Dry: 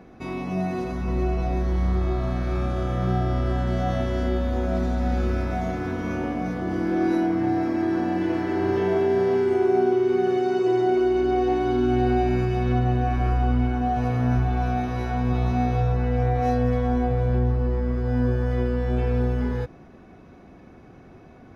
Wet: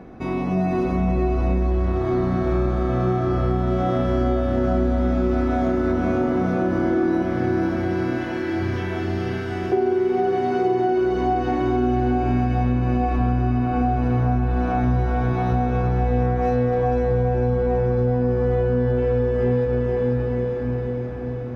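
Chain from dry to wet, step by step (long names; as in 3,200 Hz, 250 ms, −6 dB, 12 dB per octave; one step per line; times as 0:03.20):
0:07.22–0:09.72: drawn EQ curve 110 Hz 0 dB, 380 Hz −19 dB, 2,500 Hz +2 dB
feedback delay with all-pass diffusion 507 ms, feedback 64%, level −3.5 dB
downward compressor, threshold −23 dBFS, peak gain reduction 9 dB
high-shelf EQ 2,400 Hz −9 dB
level +6.5 dB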